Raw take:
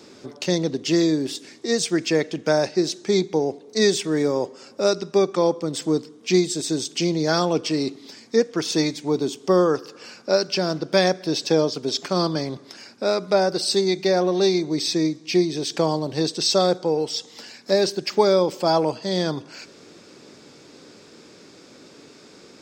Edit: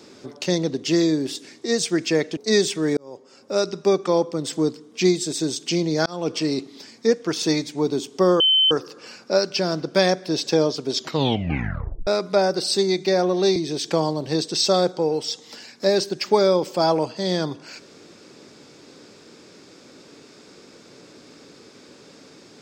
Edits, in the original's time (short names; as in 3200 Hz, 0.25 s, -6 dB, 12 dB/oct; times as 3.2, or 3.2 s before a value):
2.37–3.66 cut
4.26–5.02 fade in
7.35–7.63 fade in
9.69 add tone 3070 Hz -13.5 dBFS 0.31 s
11.95 tape stop 1.10 s
14.54–15.42 cut